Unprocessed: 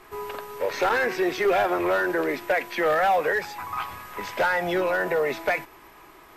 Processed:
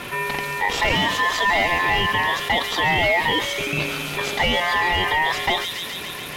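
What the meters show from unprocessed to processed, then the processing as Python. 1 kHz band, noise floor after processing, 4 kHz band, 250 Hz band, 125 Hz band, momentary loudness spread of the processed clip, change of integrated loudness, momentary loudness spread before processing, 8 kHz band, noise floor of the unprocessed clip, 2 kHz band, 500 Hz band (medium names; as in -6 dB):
+4.5 dB, -32 dBFS, +16.5 dB, +0.5 dB, +12.5 dB, 7 LU, +4.5 dB, 12 LU, +11.0 dB, -50 dBFS, +7.0 dB, -3.0 dB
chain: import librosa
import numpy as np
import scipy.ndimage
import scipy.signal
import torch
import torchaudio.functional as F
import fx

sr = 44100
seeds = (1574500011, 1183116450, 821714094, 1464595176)

y = x * np.sin(2.0 * np.pi * 1400.0 * np.arange(len(x)) / sr)
y = fx.echo_wet_highpass(y, sr, ms=140, feedback_pct=67, hz=5000.0, wet_db=-3)
y = fx.env_flatten(y, sr, amount_pct=50)
y = F.gain(torch.from_numpy(y), 4.0).numpy()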